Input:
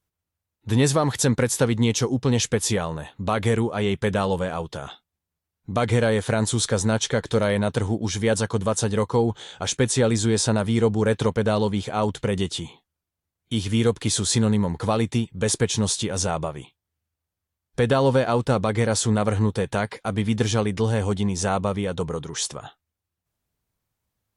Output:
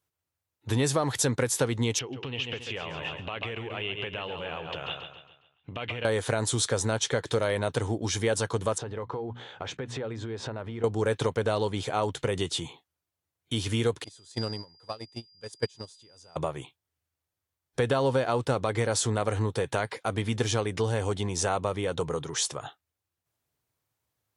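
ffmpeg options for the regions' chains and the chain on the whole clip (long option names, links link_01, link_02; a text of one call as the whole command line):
ffmpeg -i in.wav -filter_complex "[0:a]asettb=1/sr,asplit=3[link_01][link_02][link_03];[link_01]atrim=end=1.994[link_04];[link_02]atrim=start=1.99:end=6.05,asetpts=PTS-STARTPTS,afade=type=in:duration=0.004:curve=qsin,afade=type=out:start_time=4.056:duration=0.004:curve=qsin,aecho=1:1:137|274|411|548|685:0.335|0.144|0.0619|0.0266|0.0115,atrim=end_sample=179046,acompressor=threshold=-31dB:ratio=10:attack=3.2:release=140:knee=1:detection=peak,lowpass=frequency=2800:width_type=q:width=8[link_05];[link_03]atrim=start=6.046[link_06];[link_04][link_05]acrossfade=duration=0.004:curve1=hsin:curve2=qsin[link_07];[link_07][link_06]acrossfade=duration=0.004:curve1=qsin:curve2=hsin,asettb=1/sr,asplit=3[link_08][link_09][link_10];[link_08]atrim=end=8.784[link_11];[link_09]atrim=start=8.78:end=10.84,asetpts=PTS-STARTPTS,afade=type=in:duration=0.004:curve=qsin,afade=type=out:start_time=2.056:duration=0.004:curve=qsin,lowpass=2400,bandreject=frequency=60:width_type=h:width=6,bandreject=frequency=120:width_type=h:width=6,bandreject=frequency=180:width_type=h:width=6,bandreject=frequency=240:width_type=h:width=6,acompressor=threshold=-29dB:ratio=10:attack=3.2:release=140:knee=1:detection=peak[link_12];[link_10]atrim=start=10.836[link_13];[link_11][link_12]acrossfade=duration=0.004:curve1=hsin:curve2=qsin[link_14];[link_14][link_13]acrossfade=duration=0.004:curve1=qsin:curve2=hsin,asettb=1/sr,asplit=3[link_15][link_16][link_17];[link_15]atrim=end=14.044[link_18];[link_16]atrim=start=14.04:end=16.36,asetpts=PTS-STARTPTS,afade=type=in:duration=0.004:curve=qsin,afade=type=out:start_time=2.316:duration=0.004:curve=qsin,aeval=exprs='val(0)+0.0447*sin(2*PI*4800*n/s)':channel_layout=same,agate=range=-30dB:threshold=-18dB:ratio=16:release=100:detection=peak[link_19];[link_17]atrim=start=16.356[link_20];[link_18][link_19]acrossfade=duration=0.004:curve1=hsin:curve2=qsin[link_21];[link_21][link_20]acrossfade=duration=0.004:curve1=qsin:curve2=hsin,highpass=99,equalizer=frequency=200:width_type=o:width=0.43:gain=-11,acompressor=threshold=-25dB:ratio=2" out.wav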